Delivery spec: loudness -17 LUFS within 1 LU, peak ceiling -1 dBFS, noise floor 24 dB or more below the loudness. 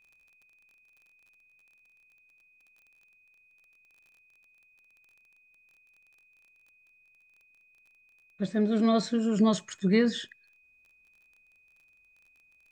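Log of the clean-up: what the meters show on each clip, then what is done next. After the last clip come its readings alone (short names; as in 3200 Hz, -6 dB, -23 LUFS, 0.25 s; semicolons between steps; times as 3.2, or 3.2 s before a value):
ticks 25/s; steady tone 2500 Hz; tone level -61 dBFS; loudness -26.5 LUFS; peak -11.5 dBFS; loudness target -17.0 LUFS
-> de-click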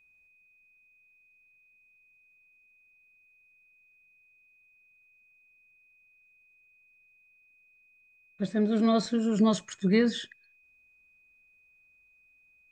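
ticks 0/s; steady tone 2500 Hz; tone level -61 dBFS
-> notch 2500 Hz, Q 30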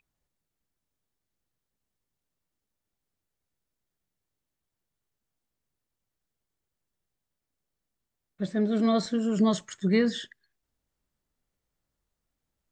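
steady tone none; loudness -26.5 LUFS; peak -11.0 dBFS; loudness target -17.0 LUFS
-> gain +9.5 dB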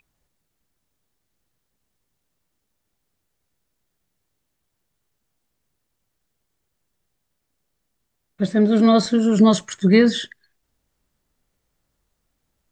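loudness -17.0 LUFS; peak -1.5 dBFS; noise floor -76 dBFS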